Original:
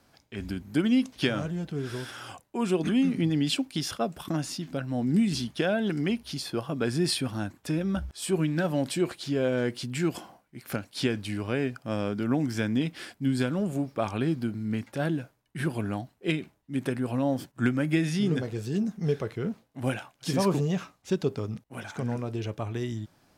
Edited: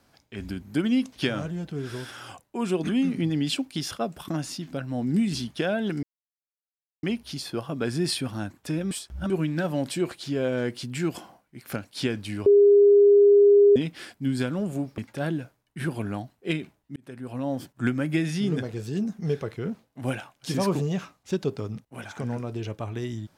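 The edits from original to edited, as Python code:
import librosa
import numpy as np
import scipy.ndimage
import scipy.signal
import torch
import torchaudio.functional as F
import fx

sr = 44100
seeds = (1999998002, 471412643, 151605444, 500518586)

y = fx.edit(x, sr, fx.insert_silence(at_s=6.03, length_s=1.0),
    fx.reverse_span(start_s=7.91, length_s=0.39),
    fx.bleep(start_s=11.46, length_s=1.3, hz=406.0, db=-12.0),
    fx.cut(start_s=13.98, length_s=0.79),
    fx.fade_in_span(start_s=16.75, length_s=0.96, curve='qsin'), tone=tone)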